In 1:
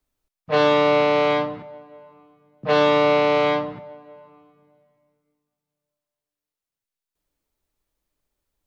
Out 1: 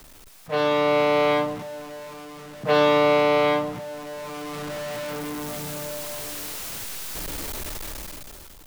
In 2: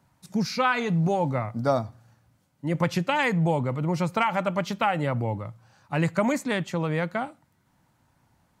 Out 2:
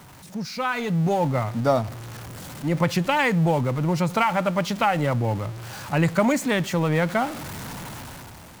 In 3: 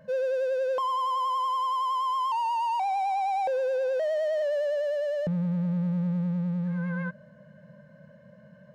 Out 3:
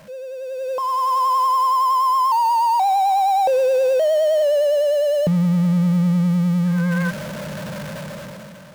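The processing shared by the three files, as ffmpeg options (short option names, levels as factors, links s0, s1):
-af "aeval=exprs='val(0)+0.5*0.02*sgn(val(0))':c=same,dynaudnorm=f=190:g=9:m=6.31,volume=0.447"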